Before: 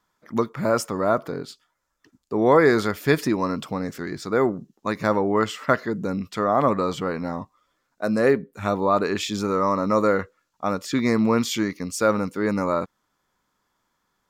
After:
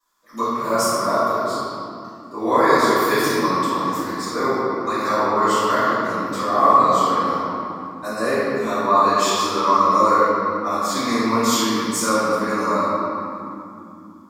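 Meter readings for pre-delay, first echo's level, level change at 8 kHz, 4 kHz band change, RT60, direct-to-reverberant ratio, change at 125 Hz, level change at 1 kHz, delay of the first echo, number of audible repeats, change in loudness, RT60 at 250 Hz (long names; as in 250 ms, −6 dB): 3 ms, no echo audible, +9.0 dB, +7.0 dB, 2.9 s, −16.5 dB, −3.5 dB, +9.5 dB, no echo audible, no echo audible, +4.0 dB, 5.2 s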